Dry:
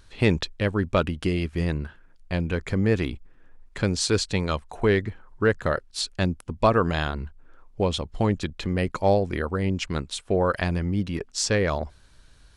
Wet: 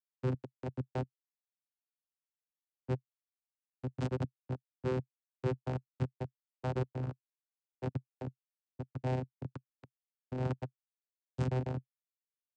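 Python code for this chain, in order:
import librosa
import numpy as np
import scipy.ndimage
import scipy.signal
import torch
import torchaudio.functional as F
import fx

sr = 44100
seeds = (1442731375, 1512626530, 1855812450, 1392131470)

y = fx.noise_reduce_blind(x, sr, reduce_db=17)
y = fx.schmitt(y, sr, flips_db=-20.5)
y = fx.vocoder(y, sr, bands=8, carrier='saw', carrier_hz=128.0)
y = fx.doppler_dist(y, sr, depth_ms=0.12)
y = F.gain(torch.from_numpy(y), 1.0).numpy()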